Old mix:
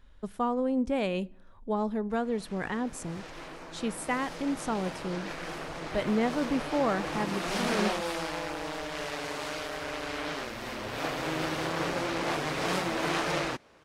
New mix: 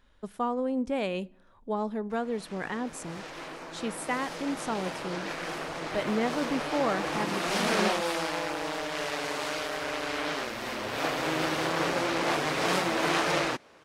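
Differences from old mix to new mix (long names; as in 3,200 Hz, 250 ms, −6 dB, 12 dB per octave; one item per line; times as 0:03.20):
background +3.5 dB
master: add low-shelf EQ 120 Hz −10 dB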